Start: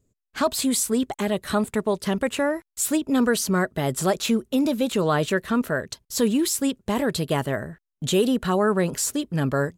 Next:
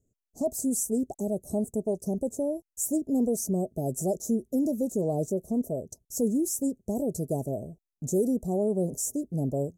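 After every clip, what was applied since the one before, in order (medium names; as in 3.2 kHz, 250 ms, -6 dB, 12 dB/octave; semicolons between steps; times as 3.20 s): Chebyshev band-stop 710–6000 Hz, order 4; trim -4.5 dB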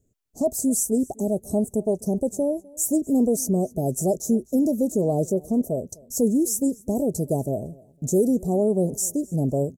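feedback delay 253 ms, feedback 27%, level -24 dB; trim +5.5 dB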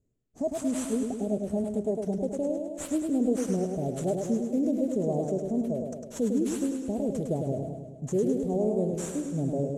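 in parallel at -10 dB: sample-rate reducer 7.3 kHz, jitter 0%; on the sum: distance through air 60 m; modulated delay 104 ms, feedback 61%, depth 65 cents, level -5 dB; trim -9 dB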